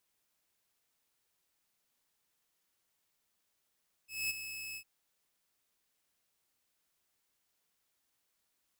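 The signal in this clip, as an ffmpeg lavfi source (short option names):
-f lavfi -i "aevalsrc='0.0376*(2*mod(2590*t,1)-1)':d=0.755:s=44100,afade=t=in:d=0.218,afade=t=out:st=0.218:d=0.022:silence=0.316,afade=t=out:st=0.68:d=0.075"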